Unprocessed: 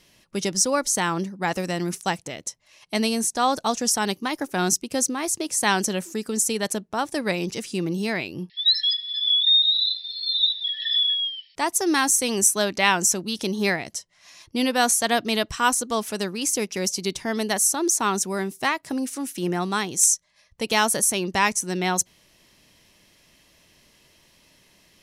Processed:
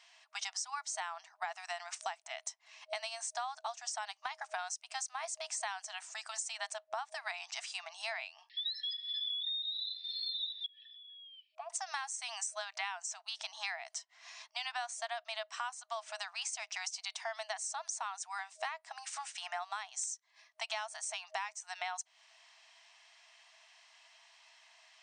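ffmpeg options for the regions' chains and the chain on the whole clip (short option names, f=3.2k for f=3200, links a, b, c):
-filter_complex "[0:a]asettb=1/sr,asplit=3[a][b][c];[a]atrim=end=10.664[d];[b]atrim=start=10.66:end=11.7,asetpts=PTS-STARTPTS,afade=t=in:d=0.004:c=qsin,afade=t=out:st=1.036:d=0.004:c=qsin,acompressor=threshold=-30dB:ratio=12:attack=3.2:release=140:knee=1:detection=peak,asplit=3[e][f][g];[e]bandpass=f=730:t=q:w=8,volume=0dB[h];[f]bandpass=f=1.09k:t=q:w=8,volume=-6dB[i];[g]bandpass=f=2.44k:t=q:w=8,volume=-9dB[j];[h][i][j]amix=inputs=3:normalize=0[k];[c]atrim=start=11.696[l];[d][k]acrossfade=d=0.004:c1=hsin:c2=qsin[m];[m][l]acrossfade=d=0.004:c1=qsin:c2=hsin,afftfilt=real='re*between(b*sr/4096,630,9200)':imag='im*between(b*sr/4096,630,9200)':win_size=4096:overlap=0.75,highshelf=f=5k:g=-9,acompressor=threshold=-36dB:ratio=12"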